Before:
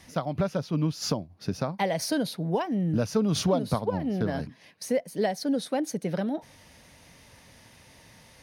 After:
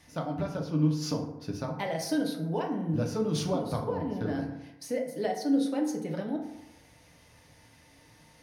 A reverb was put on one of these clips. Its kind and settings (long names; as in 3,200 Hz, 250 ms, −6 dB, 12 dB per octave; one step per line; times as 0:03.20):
feedback delay network reverb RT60 0.9 s, low-frequency decay 1×, high-frequency decay 0.45×, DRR 0.5 dB
level −7 dB